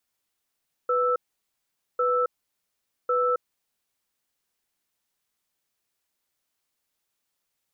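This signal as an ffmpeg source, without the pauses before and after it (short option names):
-f lavfi -i "aevalsrc='0.0708*(sin(2*PI*495*t)+sin(2*PI*1320*t))*clip(min(mod(t,1.1),0.27-mod(t,1.1))/0.005,0,1)':d=2.95:s=44100"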